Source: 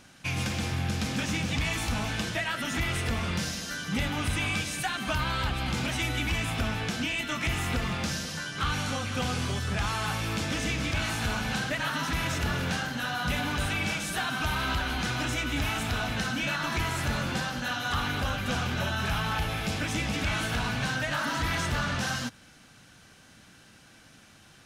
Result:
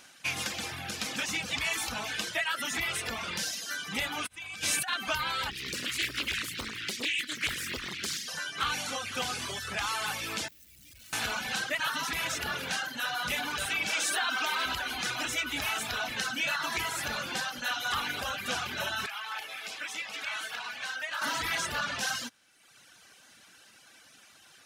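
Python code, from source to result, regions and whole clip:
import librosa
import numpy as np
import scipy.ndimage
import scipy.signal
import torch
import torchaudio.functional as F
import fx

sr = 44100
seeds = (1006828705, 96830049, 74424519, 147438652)

y = fx.chain(x, sr, fx.peak_eq(hz=76.0, db=5.5, octaves=0.99),
    fx.over_compress(threshold_db=-33.0, ratio=-0.5), at=(4.26, 4.94))
y = fx.chain(y, sr, fx.brickwall_bandstop(low_hz=390.0, high_hz=1600.0),
    fx.doppler_dist(depth_ms=0.97), at=(5.5, 8.28))
y = fx.chain(y, sr, fx.clip_1bit(),
    fx.tone_stack(knobs='10-0-1'), at=(10.48, 11.13))
y = fx.chain(y, sr, fx.highpass(hz=230.0, slope=24),
    fx.peak_eq(hz=12000.0, db=-10.5, octaves=0.36),
    fx.env_flatten(amount_pct=70), at=(13.93, 14.66))
y = fx.chain(y, sr, fx.highpass(hz=1400.0, slope=6),
    fx.high_shelf(hz=3800.0, db=-9.0), at=(19.06, 21.22))
y = fx.tilt_eq(y, sr, slope=2.0)
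y = fx.dereverb_blind(y, sr, rt60_s=1.0)
y = fx.bass_treble(y, sr, bass_db=-8, treble_db=-2)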